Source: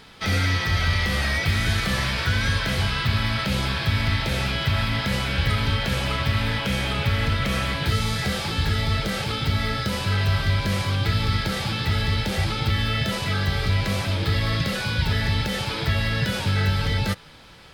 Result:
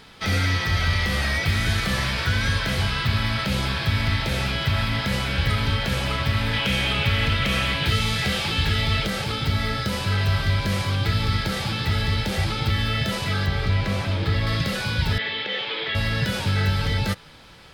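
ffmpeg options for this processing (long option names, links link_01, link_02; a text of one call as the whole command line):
ffmpeg -i in.wav -filter_complex "[0:a]asettb=1/sr,asplit=3[link_01][link_02][link_03];[link_01]atrim=end=6.534[link_04];[link_02]atrim=start=6.53:end=9.07,asetpts=PTS-STARTPTS,afade=type=in:duration=0.004:curve=qsin,afade=type=out:start_time=2.536:duration=0.004:curve=qsin,equalizer=frequency=2800:width=1.6:gain=6.5[link_05];[link_03]atrim=start=9.066[link_06];[link_04][link_05]acrossfade=duration=0.004:curve1=hsin:curve2=qsin[link_07];[link_07][link_06]acrossfade=duration=0.004:curve1=qsin:curve2=hsin,asettb=1/sr,asplit=3[link_08][link_09][link_10];[link_08]atrim=end=13.464[link_11];[link_09]atrim=start=13.46:end=14.47,asetpts=PTS-STARTPTS,afade=type=in:duration=0.004:curve=qsin,afade=type=out:start_time=1.006:duration=0.004:curve=qsin,aemphasis=mode=reproduction:type=cd[link_12];[link_10]atrim=start=14.466[link_13];[link_11][link_12]acrossfade=duration=0.004:curve1=hsin:curve2=qsin[link_14];[link_14][link_13]acrossfade=duration=0.004:curve1=qsin:curve2=hsin,asettb=1/sr,asplit=3[link_15][link_16][link_17];[link_15]atrim=end=15.184[link_18];[link_16]atrim=start=15.18:end=15.95,asetpts=PTS-STARTPTS,afade=type=in:duration=0.004:curve=qsin,afade=type=out:start_time=0.766:duration=0.004:curve=qsin,highpass=430,equalizer=frequency=450:width_type=q:width=4:gain=5,equalizer=frequency=640:width_type=q:width=4:gain=-4,equalizer=frequency=920:width_type=q:width=4:gain=-4,equalizer=frequency=1400:width_type=q:width=4:gain=-4,equalizer=frequency=2000:width_type=q:width=4:gain=4,equalizer=frequency=3300:width_type=q:width=4:gain=7,lowpass=frequency=3700:width=0.5412,lowpass=frequency=3700:width=1.3066[link_19];[link_17]atrim=start=15.946[link_20];[link_18][link_19]acrossfade=duration=0.004:curve1=hsin:curve2=qsin[link_21];[link_21][link_20]acrossfade=duration=0.004:curve1=qsin:curve2=hsin" out.wav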